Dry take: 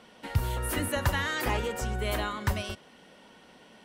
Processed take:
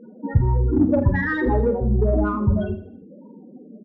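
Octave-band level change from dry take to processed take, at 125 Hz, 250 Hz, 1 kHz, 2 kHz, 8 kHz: +11.0 dB, +16.0 dB, +3.5 dB, +3.5 dB, under -35 dB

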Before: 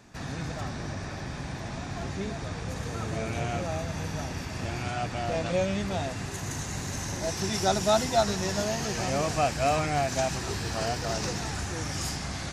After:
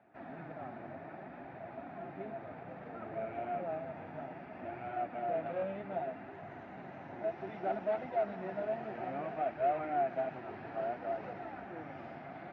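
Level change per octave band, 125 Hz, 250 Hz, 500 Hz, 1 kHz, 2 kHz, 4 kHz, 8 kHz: -20.0 dB, -12.0 dB, -6.5 dB, -6.5 dB, -13.0 dB, under -25 dB, under -40 dB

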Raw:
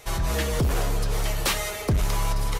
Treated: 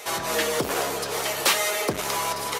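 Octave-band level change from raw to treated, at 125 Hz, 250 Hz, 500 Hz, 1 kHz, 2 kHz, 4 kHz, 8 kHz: -14.5, -2.0, +4.0, +5.0, +5.0, +5.0, +5.0 dB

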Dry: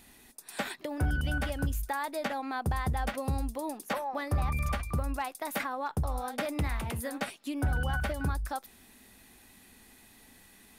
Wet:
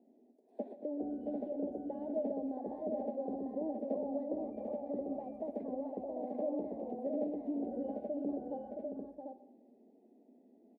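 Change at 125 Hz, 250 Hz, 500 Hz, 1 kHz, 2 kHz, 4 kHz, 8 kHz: -26.5 dB, 0.0 dB, +1.5 dB, -12.5 dB, under -35 dB, under -35 dB, under -35 dB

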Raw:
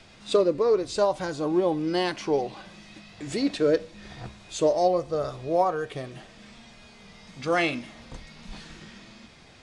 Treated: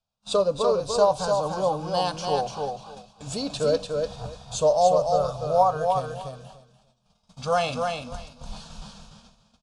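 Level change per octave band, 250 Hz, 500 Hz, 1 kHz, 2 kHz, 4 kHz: -6.5, +1.5, +6.0, -5.0, +2.5 dB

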